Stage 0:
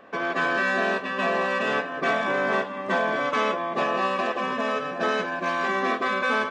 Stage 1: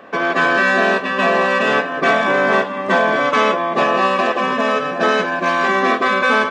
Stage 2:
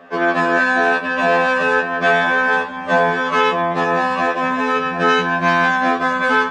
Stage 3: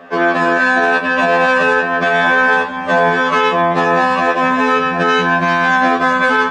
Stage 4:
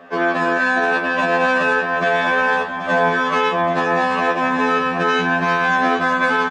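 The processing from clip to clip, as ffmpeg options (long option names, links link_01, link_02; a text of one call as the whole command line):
ffmpeg -i in.wav -af "highpass=88,volume=9dB" out.wav
ffmpeg -i in.wav -af "asubboost=boost=7.5:cutoff=120,afftfilt=real='re*2*eq(mod(b,4),0)':imag='im*2*eq(mod(b,4),0)':win_size=2048:overlap=0.75" out.wav
ffmpeg -i in.wav -af "alimiter=level_in=8.5dB:limit=-1dB:release=50:level=0:latency=1,volume=-3.5dB" out.wav
ffmpeg -i in.wav -af "aecho=1:1:781:0.316,volume=-4.5dB" out.wav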